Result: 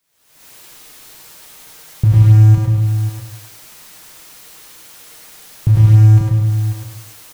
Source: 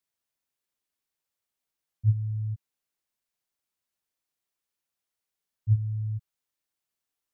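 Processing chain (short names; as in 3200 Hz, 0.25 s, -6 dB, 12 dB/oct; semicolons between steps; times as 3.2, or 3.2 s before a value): recorder AGC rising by 66 dB/s; comb 6.5 ms, depth 33%; in parallel at -10 dB: Schmitt trigger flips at -27.5 dBFS; on the sum: echo 0.54 s -10.5 dB; on a send at -5 dB: reverb RT60 0.50 s, pre-delay 83 ms; on the sum: maximiser +18 dB; lo-fi delay 0.102 s, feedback 35%, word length 7-bit, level -3.5 dB; gain -4 dB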